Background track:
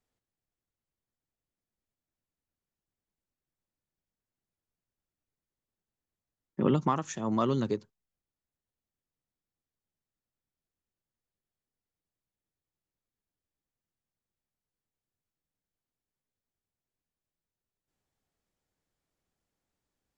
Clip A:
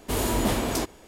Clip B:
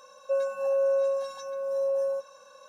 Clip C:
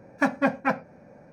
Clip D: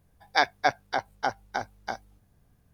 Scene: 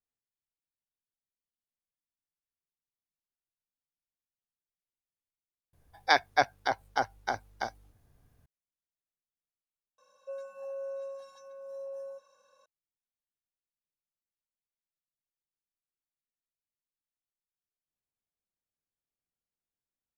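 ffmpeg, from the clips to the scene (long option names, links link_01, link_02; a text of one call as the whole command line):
ffmpeg -i bed.wav -i cue0.wav -i cue1.wav -i cue2.wav -i cue3.wav -filter_complex "[0:a]volume=-15.5dB[link_01];[4:a]equalizer=frequency=190:width=4.4:gain=-9.5[link_02];[link_01]asplit=2[link_03][link_04];[link_03]atrim=end=5.734[link_05];[link_02]atrim=end=2.73,asetpts=PTS-STARTPTS,volume=-1dB[link_06];[link_04]atrim=start=8.456[link_07];[2:a]atrim=end=2.68,asetpts=PTS-STARTPTS,volume=-14dB,afade=type=in:duration=0.004:curve=hsin,afade=type=out:start_time=2.676:duration=0.004:curve=hsin,adelay=9980[link_08];[link_05][link_06]acrossfade=duration=0.004:curve1=hsin:curve2=hsin[link_09];[link_09][link_07]acrossfade=duration=0.004:curve1=hsin:curve2=hsin[link_10];[link_10][link_08]amix=inputs=2:normalize=0" out.wav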